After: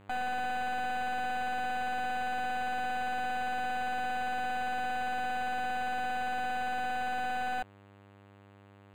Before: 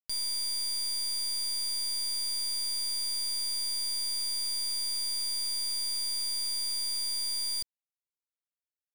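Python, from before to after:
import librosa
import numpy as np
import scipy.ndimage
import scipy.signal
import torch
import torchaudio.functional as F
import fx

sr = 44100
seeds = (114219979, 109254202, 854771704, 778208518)

y = fx.dmg_buzz(x, sr, base_hz=100.0, harmonics=29, level_db=-56.0, tilt_db=-4, odd_only=False)
y = np.interp(np.arange(len(y)), np.arange(len(y))[::8], y[::8])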